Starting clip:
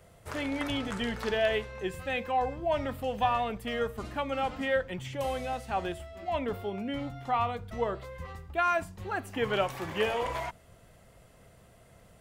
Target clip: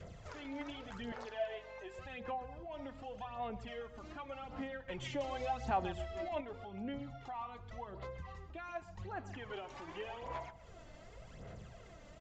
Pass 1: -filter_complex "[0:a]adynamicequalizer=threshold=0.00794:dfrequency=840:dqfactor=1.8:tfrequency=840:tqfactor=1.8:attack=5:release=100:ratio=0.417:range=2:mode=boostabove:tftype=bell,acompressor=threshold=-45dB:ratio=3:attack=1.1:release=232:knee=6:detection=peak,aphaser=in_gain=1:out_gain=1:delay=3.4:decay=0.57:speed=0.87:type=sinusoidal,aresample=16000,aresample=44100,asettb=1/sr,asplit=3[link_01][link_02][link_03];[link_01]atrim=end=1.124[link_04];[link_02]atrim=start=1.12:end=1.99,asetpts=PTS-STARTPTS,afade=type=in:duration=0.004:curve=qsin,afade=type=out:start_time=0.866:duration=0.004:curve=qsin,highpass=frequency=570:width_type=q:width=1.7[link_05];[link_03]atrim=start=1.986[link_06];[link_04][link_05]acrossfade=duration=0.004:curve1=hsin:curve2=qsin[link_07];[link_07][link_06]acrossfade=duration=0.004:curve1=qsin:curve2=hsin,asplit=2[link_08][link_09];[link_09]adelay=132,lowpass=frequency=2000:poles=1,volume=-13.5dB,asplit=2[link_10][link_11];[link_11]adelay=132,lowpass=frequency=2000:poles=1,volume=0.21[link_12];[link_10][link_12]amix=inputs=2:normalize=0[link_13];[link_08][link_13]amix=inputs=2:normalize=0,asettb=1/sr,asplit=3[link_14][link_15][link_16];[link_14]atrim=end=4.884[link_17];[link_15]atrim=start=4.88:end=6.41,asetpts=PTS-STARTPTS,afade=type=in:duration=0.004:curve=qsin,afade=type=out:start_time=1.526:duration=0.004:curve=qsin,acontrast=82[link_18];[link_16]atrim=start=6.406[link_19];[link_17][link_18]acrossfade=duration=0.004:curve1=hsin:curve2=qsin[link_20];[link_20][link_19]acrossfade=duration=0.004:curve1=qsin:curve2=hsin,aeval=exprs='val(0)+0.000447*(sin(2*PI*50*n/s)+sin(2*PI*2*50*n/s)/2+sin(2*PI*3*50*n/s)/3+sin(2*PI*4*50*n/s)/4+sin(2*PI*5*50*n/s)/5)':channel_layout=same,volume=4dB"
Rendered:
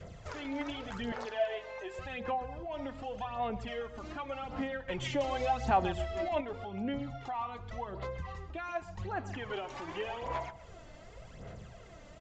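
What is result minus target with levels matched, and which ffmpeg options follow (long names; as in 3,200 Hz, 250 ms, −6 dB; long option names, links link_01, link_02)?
downward compressor: peak gain reduction −6.5 dB
-filter_complex "[0:a]adynamicequalizer=threshold=0.00794:dfrequency=840:dqfactor=1.8:tfrequency=840:tqfactor=1.8:attack=5:release=100:ratio=0.417:range=2:mode=boostabove:tftype=bell,acompressor=threshold=-55dB:ratio=3:attack=1.1:release=232:knee=6:detection=peak,aphaser=in_gain=1:out_gain=1:delay=3.4:decay=0.57:speed=0.87:type=sinusoidal,aresample=16000,aresample=44100,asettb=1/sr,asplit=3[link_01][link_02][link_03];[link_01]atrim=end=1.124[link_04];[link_02]atrim=start=1.12:end=1.99,asetpts=PTS-STARTPTS,afade=type=in:duration=0.004:curve=qsin,afade=type=out:start_time=0.866:duration=0.004:curve=qsin,highpass=frequency=570:width_type=q:width=1.7[link_05];[link_03]atrim=start=1.986[link_06];[link_04][link_05]acrossfade=duration=0.004:curve1=hsin:curve2=qsin[link_07];[link_07][link_06]acrossfade=duration=0.004:curve1=qsin:curve2=hsin,asplit=2[link_08][link_09];[link_09]adelay=132,lowpass=frequency=2000:poles=1,volume=-13.5dB,asplit=2[link_10][link_11];[link_11]adelay=132,lowpass=frequency=2000:poles=1,volume=0.21[link_12];[link_10][link_12]amix=inputs=2:normalize=0[link_13];[link_08][link_13]amix=inputs=2:normalize=0,asettb=1/sr,asplit=3[link_14][link_15][link_16];[link_14]atrim=end=4.884[link_17];[link_15]atrim=start=4.88:end=6.41,asetpts=PTS-STARTPTS,afade=type=in:duration=0.004:curve=qsin,afade=type=out:start_time=1.526:duration=0.004:curve=qsin,acontrast=82[link_18];[link_16]atrim=start=6.406[link_19];[link_17][link_18]acrossfade=duration=0.004:curve1=hsin:curve2=qsin[link_20];[link_20][link_19]acrossfade=duration=0.004:curve1=qsin:curve2=hsin,aeval=exprs='val(0)+0.000447*(sin(2*PI*50*n/s)+sin(2*PI*2*50*n/s)/2+sin(2*PI*3*50*n/s)/3+sin(2*PI*4*50*n/s)/4+sin(2*PI*5*50*n/s)/5)':channel_layout=same,volume=4dB"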